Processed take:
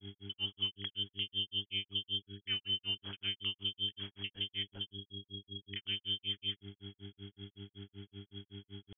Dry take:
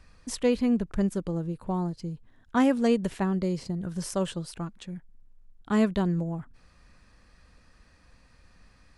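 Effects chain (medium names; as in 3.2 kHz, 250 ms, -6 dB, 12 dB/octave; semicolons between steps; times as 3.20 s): peaking EQ 250 Hz +4 dB 0.24 oct; compression, threshold -26 dBFS, peak gain reduction 10.5 dB; distance through air 250 m; frequency inversion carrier 3.3 kHz; peak limiter -28.5 dBFS, peak gain reduction 11 dB; on a send at -13.5 dB: reverberation RT60 0.50 s, pre-delay 35 ms; on the sum: mains buzz 100 Hz, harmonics 4, -48 dBFS -4 dB/octave; granulator 153 ms, grains 5.3 per s, pitch spread up and down by 0 st; trim +2 dB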